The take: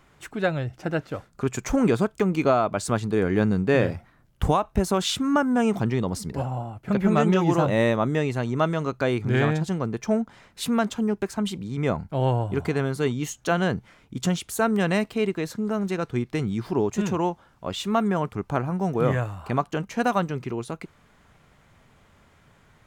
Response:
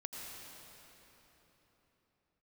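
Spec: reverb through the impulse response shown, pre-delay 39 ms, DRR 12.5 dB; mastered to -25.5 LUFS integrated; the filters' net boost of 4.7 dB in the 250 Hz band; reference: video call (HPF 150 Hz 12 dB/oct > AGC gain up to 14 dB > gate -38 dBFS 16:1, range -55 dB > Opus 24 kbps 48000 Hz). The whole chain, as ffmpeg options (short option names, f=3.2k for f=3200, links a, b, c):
-filter_complex "[0:a]equalizer=f=250:t=o:g=7,asplit=2[a][b];[1:a]atrim=start_sample=2205,adelay=39[c];[b][c]afir=irnorm=-1:irlink=0,volume=-11.5dB[d];[a][d]amix=inputs=2:normalize=0,highpass=150,dynaudnorm=m=14dB,agate=range=-55dB:threshold=-38dB:ratio=16,volume=-5.5dB" -ar 48000 -c:a libopus -b:a 24k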